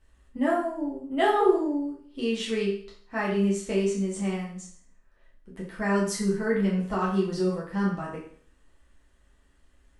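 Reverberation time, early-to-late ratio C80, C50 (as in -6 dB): 0.50 s, 8.5 dB, 4.5 dB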